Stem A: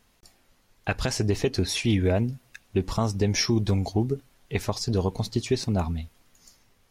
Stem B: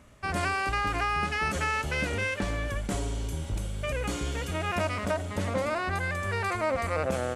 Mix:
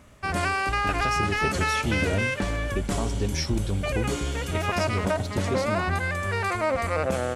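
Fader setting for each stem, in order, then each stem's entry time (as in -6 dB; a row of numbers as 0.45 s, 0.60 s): -5.5 dB, +3.0 dB; 0.00 s, 0.00 s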